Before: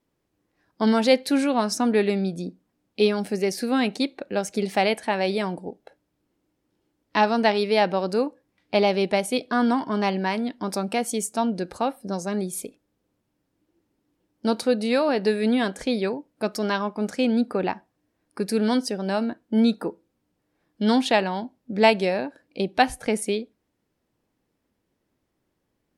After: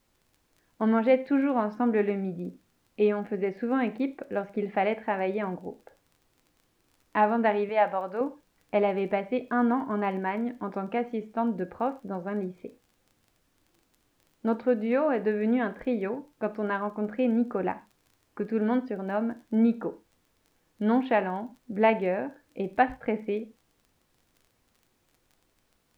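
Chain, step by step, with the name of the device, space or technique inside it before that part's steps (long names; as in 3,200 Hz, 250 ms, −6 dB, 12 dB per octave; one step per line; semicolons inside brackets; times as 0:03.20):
low-pass filter 2,200 Hz 24 dB per octave
vinyl LP (surface crackle 21 per second −42 dBFS; pink noise bed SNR 42 dB)
0:07.69–0:08.21: low shelf with overshoot 480 Hz −8.5 dB, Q 1.5
reverb whose tail is shaped and stops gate 150 ms falling, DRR 11.5 dB
level −4 dB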